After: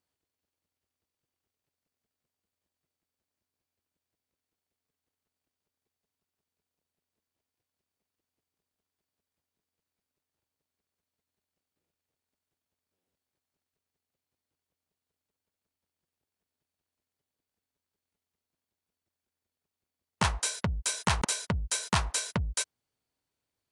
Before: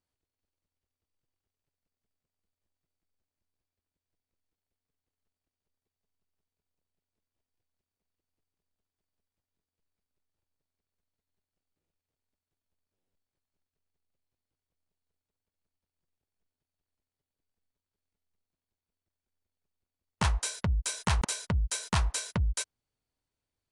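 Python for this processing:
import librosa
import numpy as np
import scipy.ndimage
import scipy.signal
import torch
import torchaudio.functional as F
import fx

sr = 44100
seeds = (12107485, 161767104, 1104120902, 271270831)

y = fx.highpass(x, sr, hz=140.0, slope=6)
y = F.gain(torch.from_numpy(y), 3.0).numpy()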